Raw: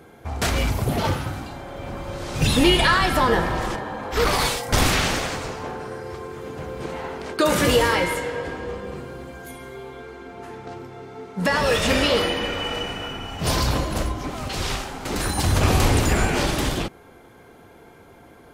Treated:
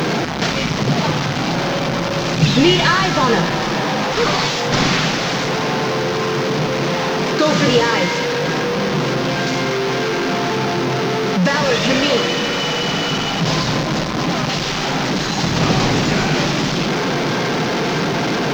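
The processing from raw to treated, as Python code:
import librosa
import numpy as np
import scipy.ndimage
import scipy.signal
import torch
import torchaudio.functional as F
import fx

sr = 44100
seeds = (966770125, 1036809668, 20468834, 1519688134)

y = fx.delta_mod(x, sr, bps=32000, step_db=-16.5)
y = fx.quant_dither(y, sr, seeds[0], bits=8, dither='none')
y = fx.low_shelf_res(y, sr, hz=110.0, db=-11.0, q=3.0)
y = F.gain(torch.from_numpy(y), 3.0).numpy()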